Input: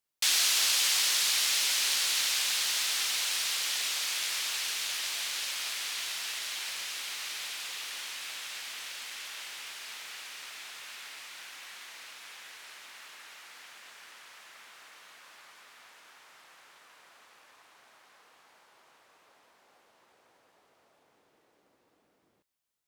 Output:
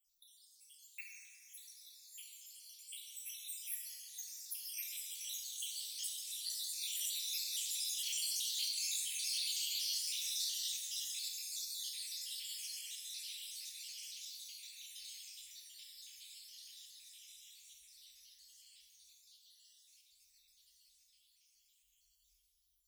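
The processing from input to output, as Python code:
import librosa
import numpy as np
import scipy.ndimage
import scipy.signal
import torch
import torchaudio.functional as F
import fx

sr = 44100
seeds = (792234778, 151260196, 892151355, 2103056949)

y = fx.spec_dropout(x, sr, seeds[0], share_pct=71)
y = scipy.signal.sosfilt(scipy.signal.cheby2(4, 50, [120.0, 1500.0], 'bandstop', fs=sr, output='sos'), y)
y = fx.dynamic_eq(y, sr, hz=4400.0, q=0.89, threshold_db=-46.0, ratio=4.0, max_db=-4)
y = fx.over_compress(y, sr, threshold_db=-50.0, ratio=-0.5)
y = fx.rev_plate(y, sr, seeds[1], rt60_s=3.0, hf_ratio=0.4, predelay_ms=0, drr_db=-3.0)
y = F.gain(torch.from_numpy(y), 4.0).numpy()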